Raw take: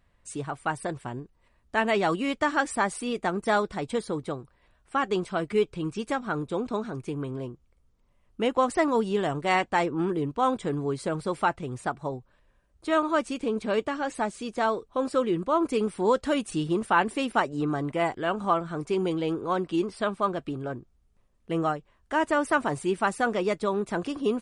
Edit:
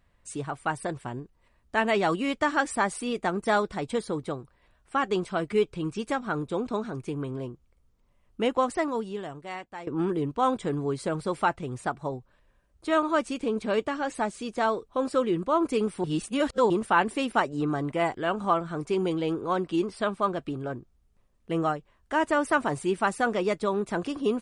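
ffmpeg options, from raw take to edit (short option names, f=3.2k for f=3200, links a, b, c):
-filter_complex "[0:a]asplit=4[a][b][c][d];[a]atrim=end=9.87,asetpts=PTS-STARTPTS,afade=t=out:st=8.49:d=1.38:c=qua:silence=0.158489[e];[b]atrim=start=9.87:end=16.042,asetpts=PTS-STARTPTS,afade=t=in:d=0.004:c=hsin:silence=0.158489[f];[c]atrim=start=16.038:end=16.702,asetpts=PTS-STARTPTS,areverse[g];[d]atrim=start=16.698[h];[e][f]concat=n=2:v=0:a=1[i];[i][g]acrossfade=d=0.004:c1=hsin:c2=hsin[j];[j][h]acrossfade=d=0.004:c1=hsin:c2=hsin"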